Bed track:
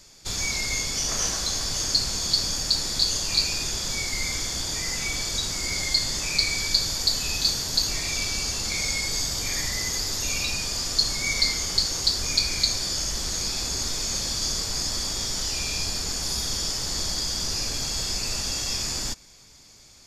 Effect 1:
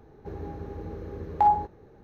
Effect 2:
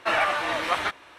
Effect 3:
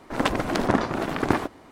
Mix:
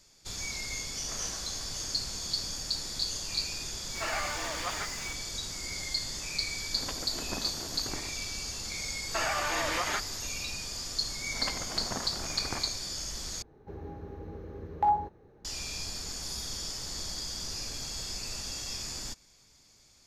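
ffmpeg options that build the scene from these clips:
-filter_complex "[2:a]asplit=2[a][b];[3:a]asplit=2[c][d];[0:a]volume=-9.5dB[e];[a]aeval=exprs='val(0)+0.5*0.0335*sgn(val(0))':c=same[f];[c]tremolo=f=7.1:d=0.43[g];[b]acompressor=threshold=-25dB:ratio=6:attack=3.2:release=140:knee=1:detection=peak[h];[d]equalizer=f=320:t=o:w=1.1:g=-8[i];[e]asplit=2[j][k];[j]atrim=end=13.424[l];[1:a]atrim=end=2.03,asetpts=PTS-STARTPTS,volume=-5dB[m];[k]atrim=start=15.446[n];[f]atrim=end=1.18,asetpts=PTS-STARTPTS,volume=-12.5dB,afade=t=in:d=0.004:c=hsin,afade=t=out:st=1.176:d=0.004:c=hsin,adelay=3950[o];[g]atrim=end=1.71,asetpts=PTS-STARTPTS,volume=-16.5dB,afade=t=in:d=0.004:c=hsin,afade=t=out:st=1.706:d=0.004:c=hsin,adelay=6630[p];[h]atrim=end=1.18,asetpts=PTS-STARTPTS,volume=-2dB,afade=t=in:d=0.004:c=hsin,afade=t=out:st=1.176:d=0.004:c=hsin,adelay=9090[q];[i]atrim=end=1.71,asetpts=PTS-STARTPTS,volume=-13dB,afade=t=in:d=0.004:c=hsin,afade=t=out:st=1.706:d=0.004:c=hsin,adelay=494802S[r];[l][m]acrossfade=d=0.004:c1=hsin:c2=hsin[s];[s][n]acrossfade=d=0.004:c1=hsin:c2=hsin[t];[t][o][p][q][r]amix=inputs=5:normalize=0"

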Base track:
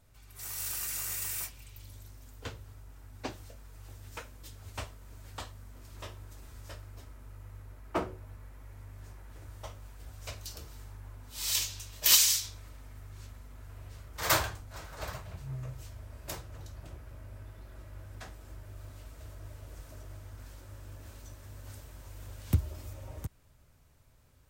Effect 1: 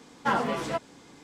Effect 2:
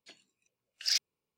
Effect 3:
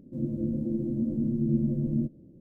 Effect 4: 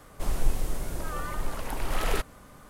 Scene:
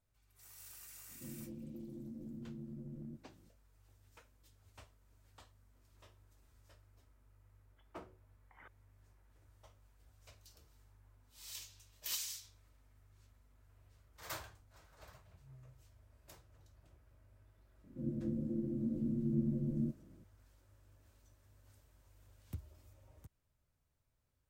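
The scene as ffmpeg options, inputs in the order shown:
-filter_complex "[3:a]asplit=2[a][b];[0:a]volume=-18.5dB[c];[a]acompressor=threshold=-30dB:ratio=6:attack=3.2:release=140:knee=1:detection=peak[d];[2:a]lowpass=f=3.1k:t=q:w=0.5098,lowpass=f=3.1k:t=q:w=0.6013,lowpass=f=3.1k:t=q:w=0.9,lowpass=f=3.1k:t=q:w=2.563,afreqshift=-3700[e];[d]atrim=end=2.4,asetpts=PTS-STARTPTS,volume=-14dB,afade=t=in:d=0.004:c=hsin,afade=t=out:st=2.396:d=0.004:c=hsin,adelay=1090[f];[e]atrim=end=1.37,asetpts=PTS-STARTPTS,volume=-18dB,afade=t=in:d=0.004:c=hsin,afade=t=out:st=1.366:d=0.004:c=hsin,adelay=339570S[g];[b]atrim=end=2.4,asetpts=PTS-STARTPTS,volume=-8.5dB,afade=t=in:d=0.004:c=hsin,afade=t=out:st=2.396:d=0.004:c=hsin,adelay=17840[h];[c][f][g][h]amix=inputs=4:normalize=0"

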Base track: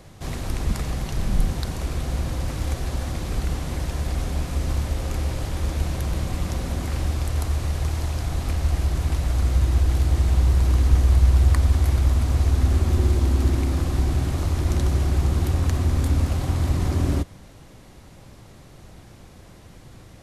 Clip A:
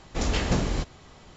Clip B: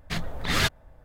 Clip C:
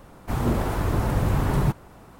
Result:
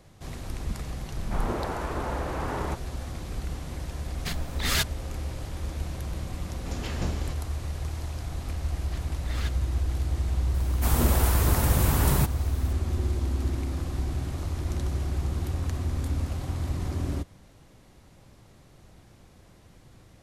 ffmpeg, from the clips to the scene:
-filter_complex "[3:a]asplit=2[a][b];[2:a]asplit=2[c][d];[0:a]volume=-8dB[e];[a]highpass=360,lowpass=2.5k[f];[c]crystalizer=i=2:c=0[g];[1:a]dynaudnorm=f=200:g=3:m=4dB[h];[b]crystalizer=i=4.5:c=0[i];[f]atrim=end=2.19,asetpts=PTS-STARTPTS,volume=-2dB,afade=t=in:d=0.004:c=hsin,afade=t=out:st=2.186:d=0.004:c=hsin,adelay=1030[j];[g]atrim=end=1.04,asetpts=PTS-STARTPTS,volume=-5dB,afade=t=in:d=0.004:c=hsin,afade=t=out:st=1.036:d=0.004:c=hsin,adelay=4150[k];[h]atrim=end=1.36,asetpts=PTS-STARTPTS,volume=-12.5dB,afade=t=in:d=0.004:c=hsin,afade=t=out:st=1.356:d=0.004:c=hsin,adelay=286650S[l];[d]atrim=end=1.04,asetpts=PTS-STARTPTS,volume=-15.5dB,afade=t=in:d=0.004:c=hsin,afade=t=out:st=1.036:d=0.004:c=hsin,adelay=8810[m];[i]atrim=end=2.19,asetpts=PTS-STARTPTS,volume=-3dB,afade=t=in:d=0.004:c=hsin,afade=t=out:st=2.186:d=0.004:c=hsin,adelay=10540[n];[e][j][k][l][m][n]amix=inputs=6:normalize=0"

